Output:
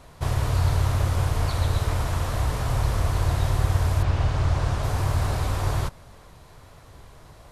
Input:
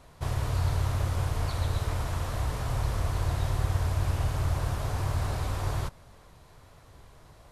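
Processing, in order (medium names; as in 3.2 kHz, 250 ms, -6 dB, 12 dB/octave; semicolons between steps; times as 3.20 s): 4.02–4.82 s: low-pass 4.5 kHz -> 8.3 kHz 12 dB/octave; trim +5.5 dB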